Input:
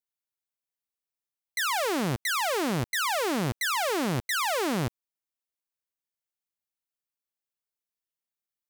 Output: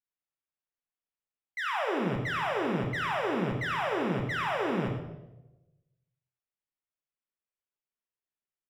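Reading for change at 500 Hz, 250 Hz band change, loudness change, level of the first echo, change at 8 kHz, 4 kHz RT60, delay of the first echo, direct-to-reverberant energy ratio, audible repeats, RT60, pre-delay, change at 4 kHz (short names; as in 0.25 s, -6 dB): -1.0 dB, -1.5 dB, -3.0 dB, -11.0 dB, -21.0 dB, 0.75 s, 88 ms, 1.0 dB, 1, 1.0 s, 3 ms, -8.5 dB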